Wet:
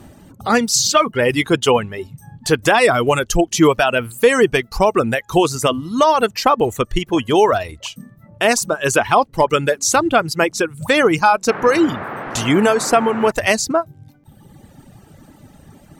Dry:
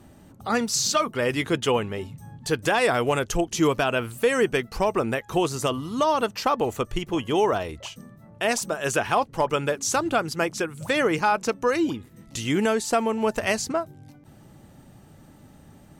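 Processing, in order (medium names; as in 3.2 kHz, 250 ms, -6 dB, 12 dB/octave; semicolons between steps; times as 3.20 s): reverb removal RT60 1.3 s; 11.48–13.30 s: band noise 110–1600 Hz -37 dBFS; trim +9 dB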